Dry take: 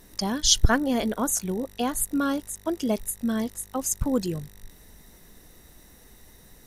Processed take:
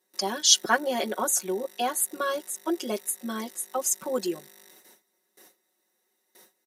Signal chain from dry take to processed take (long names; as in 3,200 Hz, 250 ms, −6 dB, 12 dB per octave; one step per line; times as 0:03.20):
noise gate with hold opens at −39 dBFS
high-pass filter 300 Hz 24 dB per octave
comb filter 5.4 ms, depth 97%
level −1.5 dB